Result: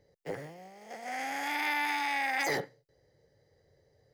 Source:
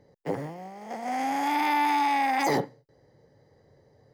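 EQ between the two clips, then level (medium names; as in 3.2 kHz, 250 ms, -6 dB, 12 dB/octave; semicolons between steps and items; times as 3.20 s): dynamic bell 1.6 kHz, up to +7 dB, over -44 dBFS, Q 1.4; graphic EQ 125/250/1000 Hz -5/-11/-11 dB; -2.0 dB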